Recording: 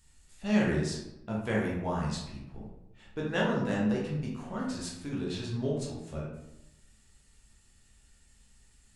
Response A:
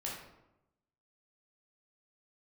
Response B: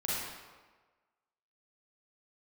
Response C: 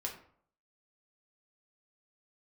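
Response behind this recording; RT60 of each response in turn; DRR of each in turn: A; 0.90 s, 1.4 s, 0.60 s; -4.5 dB, -7.5 dB, -0.5 dB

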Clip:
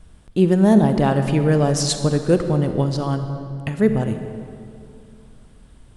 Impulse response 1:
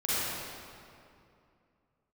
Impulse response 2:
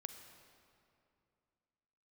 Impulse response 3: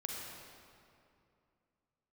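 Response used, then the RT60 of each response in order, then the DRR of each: 2; 2.5 s, 2.5 s, 2.6 s; -11.5 dB, 7.5 dB, -1.5 dB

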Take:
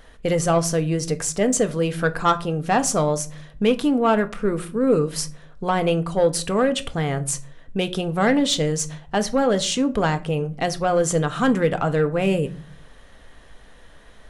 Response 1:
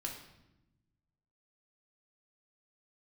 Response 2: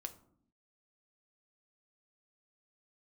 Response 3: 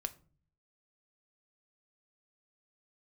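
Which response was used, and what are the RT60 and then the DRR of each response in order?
3; 0.90 s, 0.65 s, 0.40 s; -0.5 dB, 7.0 dB, 9.5 dB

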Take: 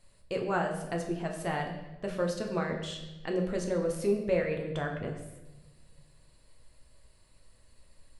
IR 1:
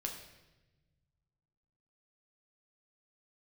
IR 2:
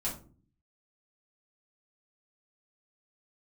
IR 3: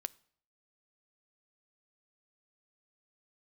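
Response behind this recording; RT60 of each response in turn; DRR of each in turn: 1; 1.1 s, 0.45 s, 0.60 s; 1.0 dB, -7.5 dB, 17.0 dB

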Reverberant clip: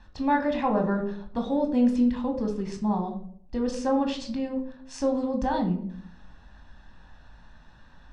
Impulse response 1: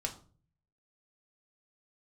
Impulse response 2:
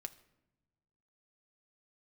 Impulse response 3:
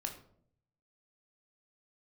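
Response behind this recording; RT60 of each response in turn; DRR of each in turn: 3; 0.40 s, no single decay rate, 0.60 s; 1.5 dB, 7.5 dB, 3.0 dB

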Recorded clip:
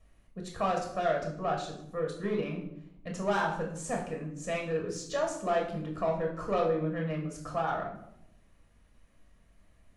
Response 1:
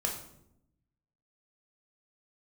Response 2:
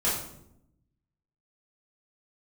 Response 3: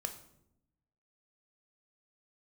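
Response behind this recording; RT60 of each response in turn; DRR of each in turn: 1; 0.75 s, 0.75 s, 0.80 s; 0.0 dB, -10.0 dB, 6.0 dB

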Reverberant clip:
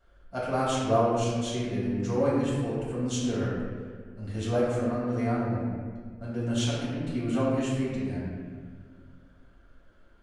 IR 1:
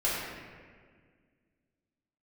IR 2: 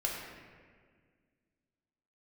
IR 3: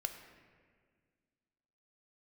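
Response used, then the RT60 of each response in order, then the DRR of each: 1; 1.8 s, 1.8 s, 1.8 s; -9.5 dB, -3.0 dB, 6.0 dB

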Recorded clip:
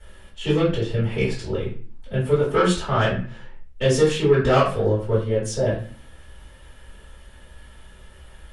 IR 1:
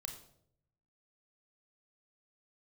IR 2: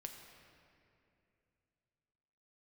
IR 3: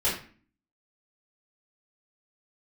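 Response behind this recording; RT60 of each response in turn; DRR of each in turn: 3; 0.70 s, 2.7 s, 0.40 s; 4.0 dB, 3.0 dB, -10.0 dB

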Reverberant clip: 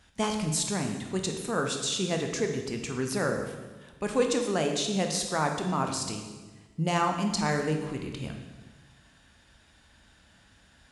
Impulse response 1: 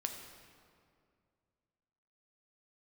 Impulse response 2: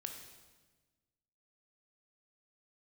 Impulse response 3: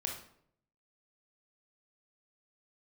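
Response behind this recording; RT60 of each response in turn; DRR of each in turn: 2; 2.3 s, 1.3 s, 0.65 s; 3.5 dB, 3.5 dB, 0.5 dB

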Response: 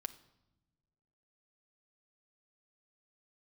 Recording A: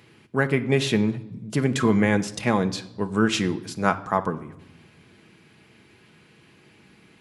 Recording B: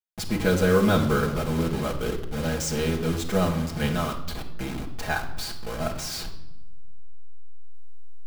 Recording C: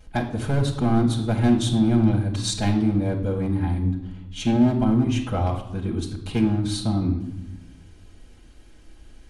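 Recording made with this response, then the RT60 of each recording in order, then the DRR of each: A; 1.0 s, 0.90 s, 0.90 s; 7.0 dB, -2.5 dB, -7.5 dB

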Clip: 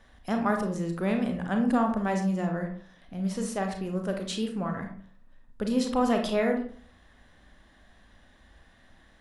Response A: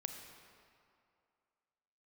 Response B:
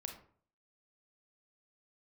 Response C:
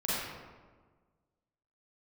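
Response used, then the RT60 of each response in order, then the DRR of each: B; 2.4 s, 0.50 s, 1.5 s; 5.0 dB, 3.5 dB, -10.0 dB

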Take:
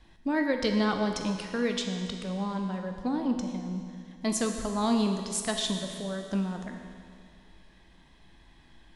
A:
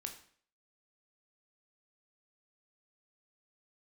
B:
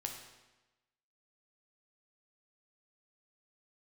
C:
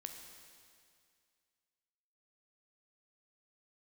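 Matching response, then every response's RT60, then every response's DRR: C; 0.50 s, 1.1 s, 2.2 s; 4.0 dB, 2.0 dB, 4.0 dB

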